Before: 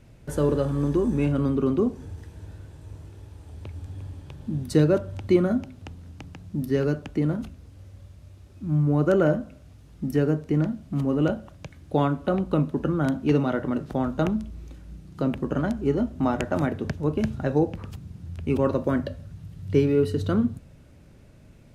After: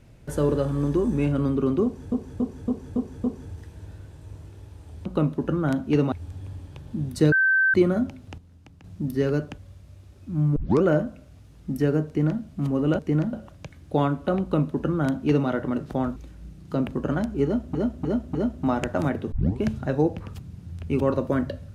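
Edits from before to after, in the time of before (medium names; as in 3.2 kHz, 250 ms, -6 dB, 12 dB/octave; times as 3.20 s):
1.84–2.12 s: loop, 6 plays
4.86–5.28 s: bleep 1.55 kHz -16.5 dBFS
5.92–6.38 s: gain -9 dB
7.12–7.92 s: delete
8.90 s: tape start 0.27 s
10.41–10.75 s: copy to 11.33 s
12.42–13.48 s: copy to 3.66 s
14.16–14.63 s: delete
15.92–16.22 s: loop, 4 plays
16.89 s: tape start 0.29 s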